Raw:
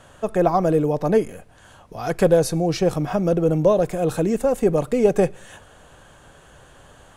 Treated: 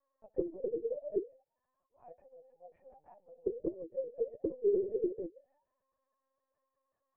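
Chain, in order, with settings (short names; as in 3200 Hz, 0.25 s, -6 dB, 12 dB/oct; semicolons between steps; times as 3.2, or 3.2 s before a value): low shelf 370 Hz +10.5 dB; 2.02–3.46 negative-ratio compressor -20 dBFS, ratio -1; vocal tract filter e; added harmonics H 2 -17 dB, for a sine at -5.5 dBFS; auto-wah 330–1100 Hz, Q 21, down, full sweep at -17 dBFS; 4.52–4.96 flutter echo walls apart 5.1 m, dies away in 0.5 s; LPC vocoder at 8 kHz pitch kept; gain -1 dB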